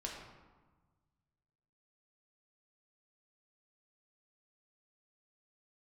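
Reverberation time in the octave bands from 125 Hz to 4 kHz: 2.4, 1.7, 1.3, 1.4, 1.0, 0.70 seconds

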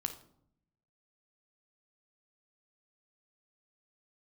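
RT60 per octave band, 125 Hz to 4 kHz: 1.2, 1.0, 0.70, 0.65, 0.45, 0.40 seconds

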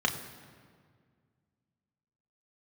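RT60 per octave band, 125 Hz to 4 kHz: 2.6, 2.4, 2.0, 1.8, 1.6, 1.3 seconds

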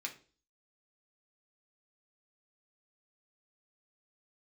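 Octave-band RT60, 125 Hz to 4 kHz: 0.45, 0.50, 0.45, 0.35, 0.35, 0.40 seconds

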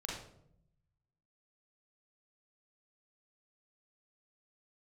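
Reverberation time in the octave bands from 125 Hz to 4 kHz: 1.5, 1.2, 0.85, 0.60, 0.50, 0.45 seconds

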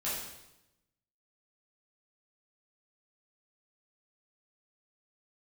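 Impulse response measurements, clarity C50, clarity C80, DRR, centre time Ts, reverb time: 0.5 dB, 4.5 dB, −10.0 dB, 64 ms, 0.90 s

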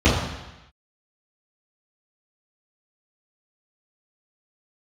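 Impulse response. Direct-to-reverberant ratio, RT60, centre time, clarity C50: −13.5 dB, 1.0 s, 60 ms, 2.0 dB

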